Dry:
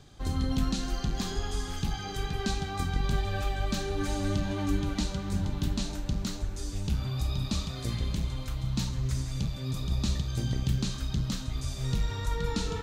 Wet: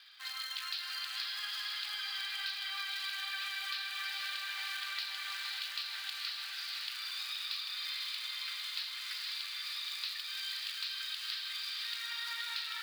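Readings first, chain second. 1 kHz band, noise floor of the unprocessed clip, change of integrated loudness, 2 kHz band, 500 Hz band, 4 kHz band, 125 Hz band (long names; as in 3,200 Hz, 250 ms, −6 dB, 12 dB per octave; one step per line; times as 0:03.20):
−8.5 dB, −37 dBFS, −5.0 dB, +4.0 dB, below −35 dB, +5.0 dB, below −40 dB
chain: elliptic low-pass filter 4,800 Hz, stop band 40 dB
in parallel at −4 dB: floating-point word with a short mantissa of 2 bits
on the sum: inverse Chebyshev high-pass filter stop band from 260 Hz, stop band 80 dB
feedback delay with all-pass diffusion 532 ms, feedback 62%, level −4 dB
downward compressor 4 to 1, threshold −39 dBFS, peak gain reduction 8 dB
level +3 dB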